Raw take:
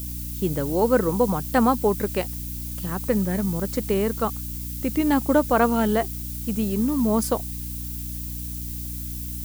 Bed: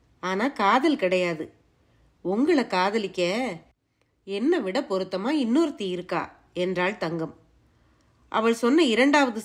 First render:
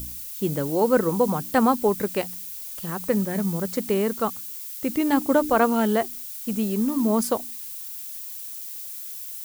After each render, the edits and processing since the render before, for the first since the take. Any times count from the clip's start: de-hum 60 Hz, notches 5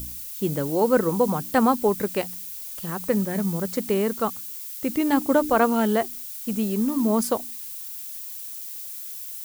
nothing audible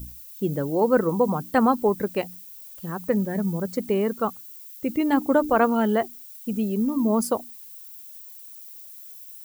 denoiser 11 dB, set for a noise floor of -36 dBFS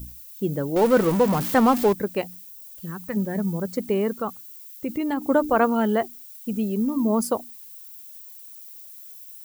0.76–1.93 zero-crossing step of -24 dBFS; 2.5–3.15 bell 2400 Hz -> 350 Hz -15 dB 1.1 oct; 4.18–5.26 compressor 2.5:1, threshold -23 dBFS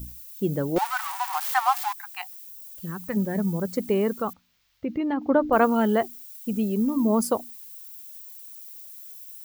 0.78–2.46 brick-wall FIR high-pass 710 Hz; 4.33–5.53 air absorption 250 m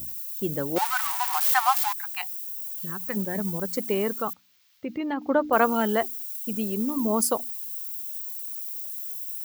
HPF 72 Hz; tilt +2 dB/oct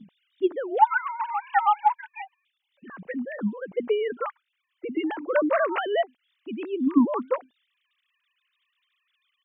sine-wave speech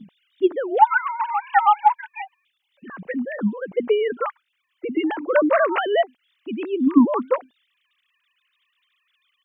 gain +5 dB; limiter -3 dBFS, peak gain reduction 2 dB

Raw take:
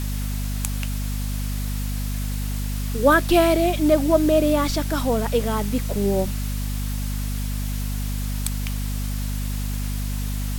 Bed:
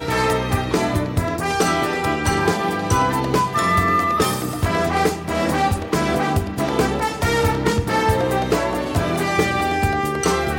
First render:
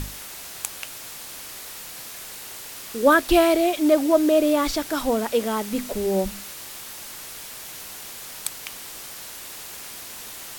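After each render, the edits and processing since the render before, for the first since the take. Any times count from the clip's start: notches 50/100/150/200/250 Hz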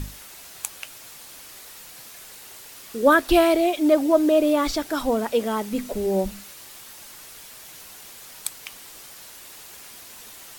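denoiser 6 dB, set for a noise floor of -38 dBFS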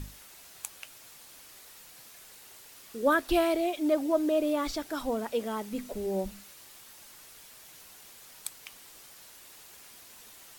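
gain -8.5 dB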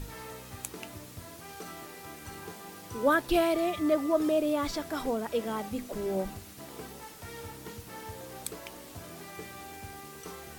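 add bed -25.5 dB

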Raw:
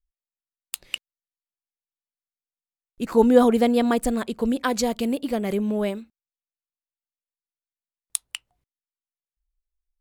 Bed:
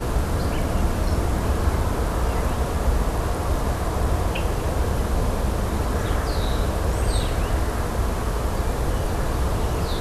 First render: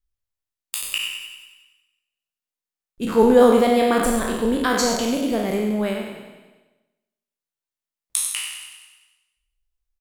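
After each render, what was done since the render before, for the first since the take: spectral trails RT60 0.98 s; feedback echo 95 ms, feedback 59%, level -10 dB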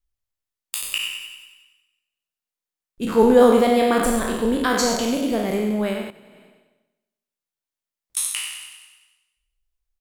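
6.1–8.17 compressor, threshold -44 dBFS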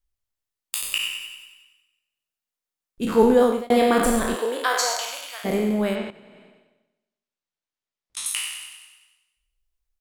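3.02–3.7 fade out equal-power; 4.34–5.44 HPF 330 Hz -> 1200 Hz 24 dB/oct; 5.95–8.26 LPF 6000 Hz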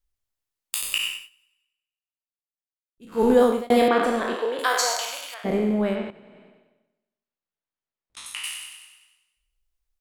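1.09–3.32 dip -21 dB, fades 0.21 s; 3.88–4.59 three-band isolator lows -23 dB, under 230 Hz, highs -20 dB, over 4500 Hz; 5.34–8.44 LPF 2000 Hz 6 dB/oct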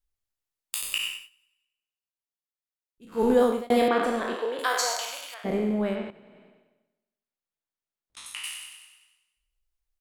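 gain -3.5 dB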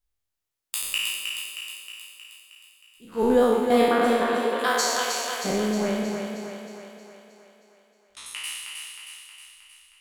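spectral trails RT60 0.95 s; thinning echo 0.314 s, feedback 58%, high-pass 180 Hz, level -5 dB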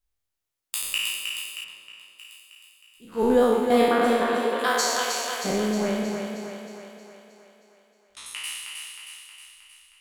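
1.64–2.19 RIAA curve playback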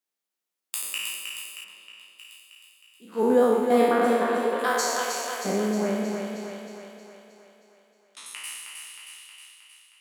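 elliptic high-pass 180 Hz; dynamic EQ 3500 Hz, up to -6 dB, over -45 dBFS, Q 1.3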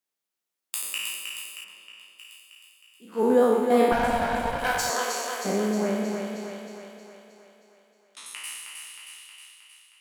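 1.58–3.25 notch 3900 Hz; 3.92–4.9 minimum comb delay 1.3 ms

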